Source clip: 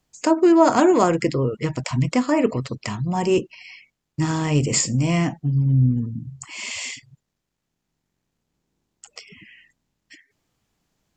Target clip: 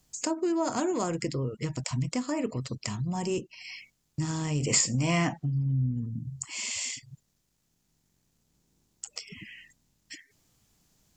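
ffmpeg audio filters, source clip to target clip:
-filter_complex "[0:a]bass=f=250:g=5,treble=f=4k:g=10,acompressor=threshold=-38dB:ratio=2,asplit=3[a][b][c];[a]afade=t=out:st=4.6:d=0.02[d];[b]equalizer=f=1.3k:w=0.33:g=12.5,afade=t=in:st=4.6:d=0.02,afade=t=out:st=5.44:d=0.02[e];[c]afade=t=in:st=5.44:d=0.02[f];[d][e][f]amix=inputs=3:normalize=0"

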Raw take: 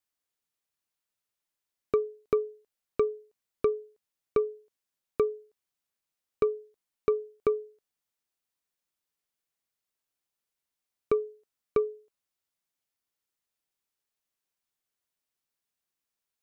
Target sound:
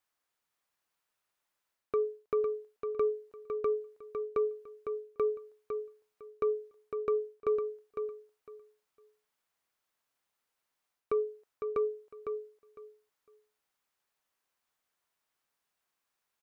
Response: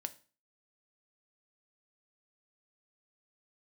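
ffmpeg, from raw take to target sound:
-af "equalizer=f=1.1k:t=o:w=2.4:g=8.5,areverse,acompressor=threshold=-27dB:ratio=12,areverse,aecho=1:1:505|1010|1515:0.473|0.0946|0.0189"

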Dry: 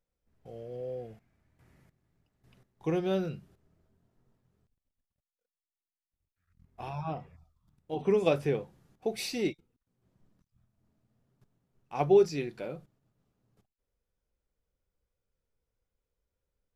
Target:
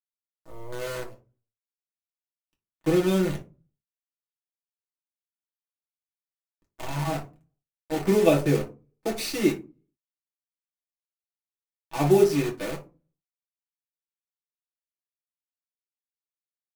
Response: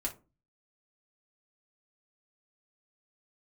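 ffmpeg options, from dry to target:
-filter_complex "[0:a]acrusher=bits=7:dc=4:mix=0:aa=0.000001,aeval=exprs='sgn(val(0))*max(abs(val(0))-0.00335,0)':c=same[a];[1:a]atrim=start_sample=2205,asetrate=42336,aresample=44100[b];[a][b]afir=irnorm=-1:irlink=0,volume=4.5dB"

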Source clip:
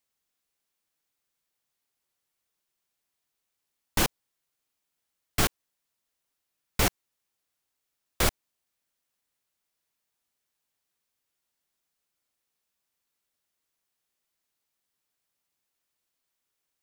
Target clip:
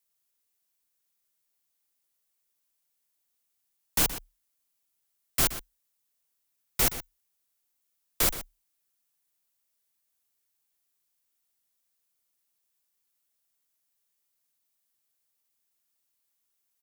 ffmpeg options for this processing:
-filter_complex "[0:a]asplit=2[a][b];[b]adelay=122.4,volume=-12dB,highshelf=f=4k:g=-2.76[c];[a][c]amix=inputs=2:normalize=0,afreqshift=-37,crystalizer=i=1.5:c=0,volume=-4.5dB"

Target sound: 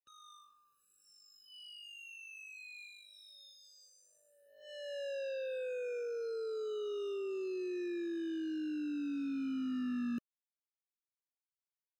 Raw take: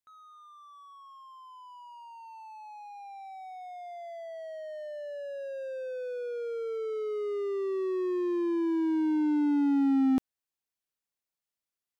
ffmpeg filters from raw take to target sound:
-af "acompressor=threshold=-47dB:ratio=3,afreqshift=-25,acrusher=bits=7:mix=0:aa=0.5,afftfilt=real='re*eq(mod(floor(b*sr/1024/600),2),0)':imag='im*eq(mod(floor(b*sr/1024/600),2),0)':win_size=1024:overlap=0.75,volume=5.5dB"

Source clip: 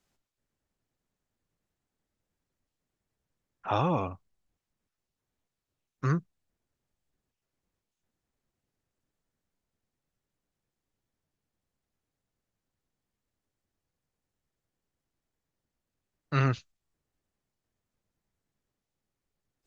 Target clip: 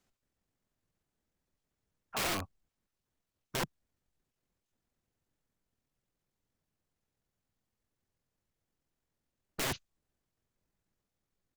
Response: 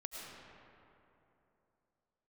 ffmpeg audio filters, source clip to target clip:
-af "atempo=1.7,aeval=exprs='(mod(25.1*val(0)+1,2)-1)/25.1':c=same"

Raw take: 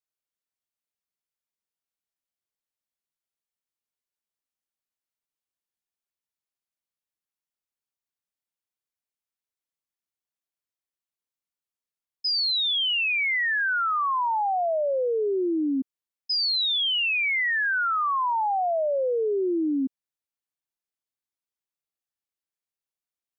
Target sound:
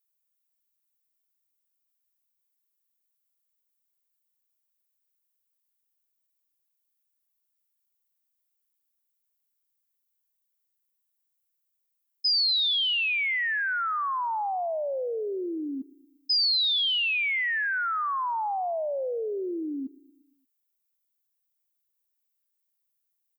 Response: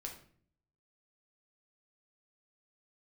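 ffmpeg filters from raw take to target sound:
-af "aemphasis=mode=production:type=bsi,aecho=1:1:116|232|348|464|580:0.0794|0.0477|0.0286|0.0172|0.0103,volume=-4dB"

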